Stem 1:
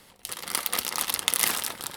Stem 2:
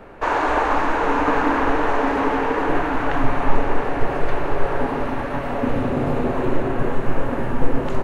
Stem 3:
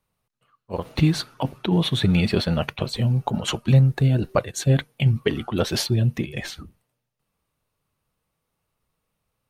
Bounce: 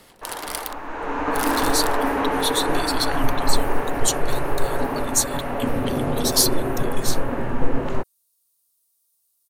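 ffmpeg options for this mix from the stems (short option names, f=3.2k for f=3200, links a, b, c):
-filter_complex "[0:a]acompressor=threshold=-28dB:ratio=4,volume=2dB,asplit=3[a][b][c];[a]atrim=end=0.73,asetpts=PTS-STARTPTS,afade=t=out:st=0.726:d=0.004:c=hsin[d];[b]atrim=start=0.73:end=1.34,asetpts=PTS-STARTPTS,volume=0[e];[c]atrim=start=1.34,asetpts=PTS-STARTPTS,afade=t=in:d=0.004:c=hsin[f];[d][e][f]concat=n=3:v=0:a=1[g];[1:a]volume=-2dB,afade=t=in:st=0.82:d=0.74:silence=0.237137[h];[2:a]bass=f=250:g=-12,treble=f=4k:g=14,aexciter=amount=4.1:drive=5.1:freq=3.5k,adelay=600,volume=-12.5dB[i];[g][h][i]amix=inputs=3:normalize=0"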